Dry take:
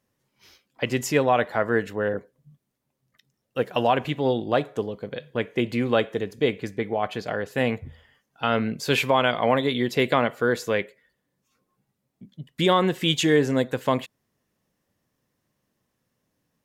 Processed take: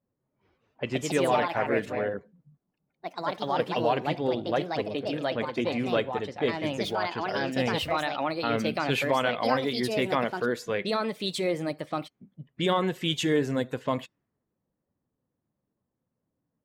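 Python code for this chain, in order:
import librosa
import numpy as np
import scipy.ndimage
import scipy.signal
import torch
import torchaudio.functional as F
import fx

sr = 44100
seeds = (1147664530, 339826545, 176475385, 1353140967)

y = fx.spec_quant(x, sr, step_db=15)
y = fx.env_lowpass(y, sr, base_hz=960.0, full_db=-21.0)
y = fx.echo_pitch(y, sr, ms=258, semitones=3, count=2, db_per_echo=-3.0)
y = y * librosa.db_to_amplitude(-5.0)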